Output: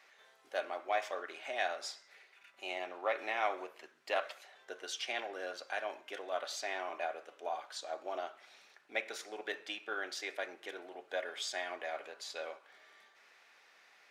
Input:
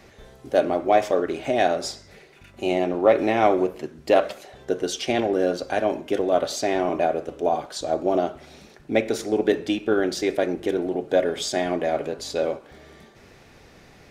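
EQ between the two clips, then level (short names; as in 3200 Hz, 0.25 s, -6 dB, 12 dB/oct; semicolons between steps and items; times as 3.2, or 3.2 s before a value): HPF 1300 Hz 12 dB/oct; high shelf 3600 Hz -10.5 dB; -4.0 dB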